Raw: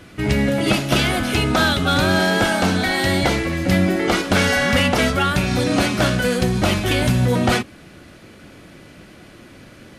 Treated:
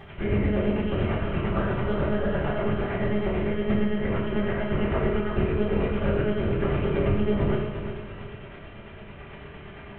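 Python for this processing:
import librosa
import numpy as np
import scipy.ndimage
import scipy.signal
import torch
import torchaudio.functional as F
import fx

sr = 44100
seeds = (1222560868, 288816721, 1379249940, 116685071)

y = fx.delta_mod(x, sr, bps=16000, step_db=-30.5)
y = y * (1.0 - 0.58 / 2.0 + 0.58 / 2.0 * np.cos(2.0 * np.pi * 8.9 * (np.arange(len(y)) / sr)))
y = fx.lpc_monotone(y, sr, seeds[0], pitch_hz=210.0, order=8)
y = fx.echo_feedback(y, sr, ms=353, feedback_pct=39, wet_db=-9.0)
y = fx.rev_fdn(y, sr, rt60_s=0.76, lf_ratio=1.3, hf_ratio=0.9, size_ms=15.0, drr_db=-3.0)
y = y * librosa.db_to_amplitude(-8.0)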